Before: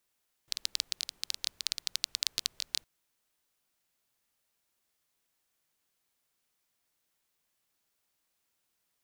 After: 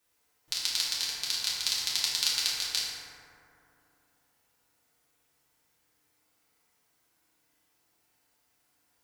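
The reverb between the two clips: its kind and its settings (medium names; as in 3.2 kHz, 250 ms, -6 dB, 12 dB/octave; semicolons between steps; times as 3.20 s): FDN reverb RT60 2.9 s, high-frequency decay 0.3×, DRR -9 dB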